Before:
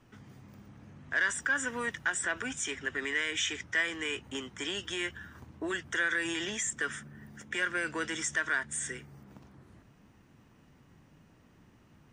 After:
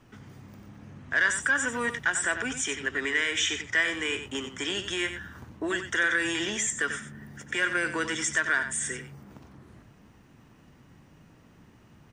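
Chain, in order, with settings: echo 92 ms -9.5 dB; gain +4.5 dB

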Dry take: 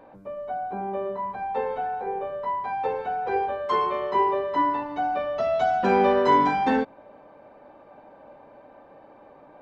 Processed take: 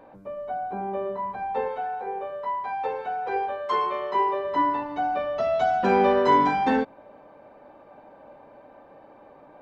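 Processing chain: 1.68–4.45 low shelf 300 Hz -9 dB

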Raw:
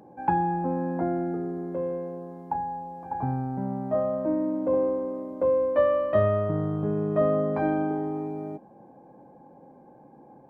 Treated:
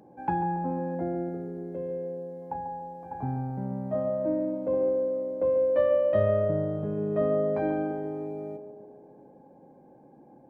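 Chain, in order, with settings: bell 1100 Hz -4 dB 0.95 oct, from 0.95 s -13.5 dB, from 2.42 s -6 dB; narrowing echo 0.14 s, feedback 65%, band-pass 420 Hz, level -6.5 dB; gain -2.5 dB

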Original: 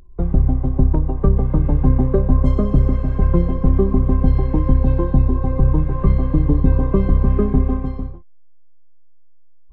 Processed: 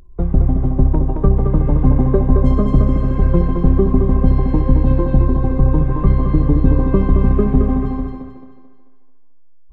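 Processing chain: thinning echo 0.219 s, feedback 44%, high-pass 180 Hz, level -4 dB; gain +1.5 dB

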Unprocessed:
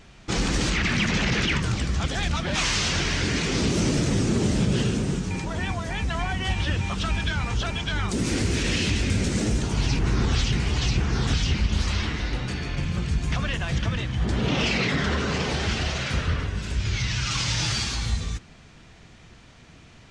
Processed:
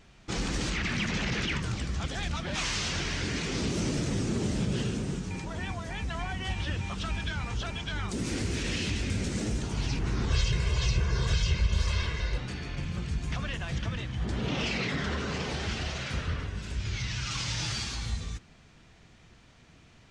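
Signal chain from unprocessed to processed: 10.3–12.38 comb 1.9 ms, depth 86%; gain -7 dB

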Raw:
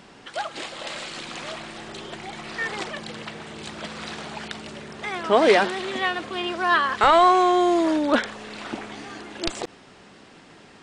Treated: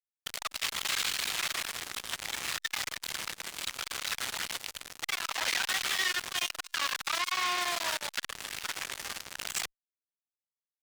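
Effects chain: Bessel high-pass 1500 Hz, order 4; fuzz box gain 44 dB, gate -40 dBFS; core saturation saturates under 3500 Hz; gain -8 dB

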